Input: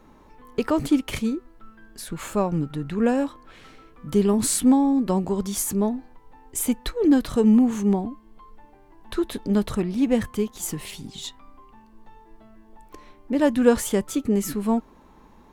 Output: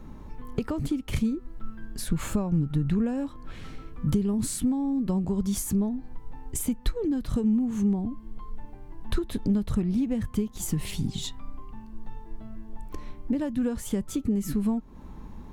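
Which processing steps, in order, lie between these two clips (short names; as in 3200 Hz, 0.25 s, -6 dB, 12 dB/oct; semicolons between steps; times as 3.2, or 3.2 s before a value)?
compressor 6:1, threshold -31 dBFS, peak gain reduction 18.5 dB; tone controls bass +14 dB, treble +1 dB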